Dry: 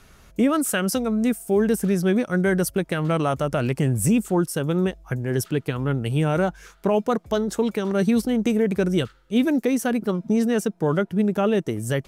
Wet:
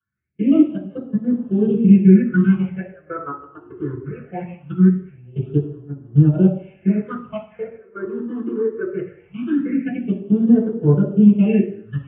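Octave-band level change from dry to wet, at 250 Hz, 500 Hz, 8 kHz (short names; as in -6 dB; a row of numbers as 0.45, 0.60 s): +5.5 dB, -2.0 dB, under -40 dB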